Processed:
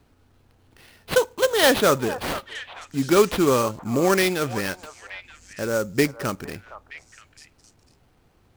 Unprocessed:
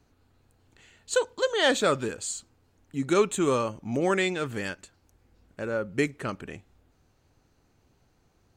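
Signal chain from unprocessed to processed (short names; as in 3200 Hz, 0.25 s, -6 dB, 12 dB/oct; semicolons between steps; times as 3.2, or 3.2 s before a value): sample-rate reducer 7200 Hz, jitter 20%; delay with a stepping band-pass 0.463 s, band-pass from 890 Hz, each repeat 1.4 oct, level -9 dB; gain +5.5 dB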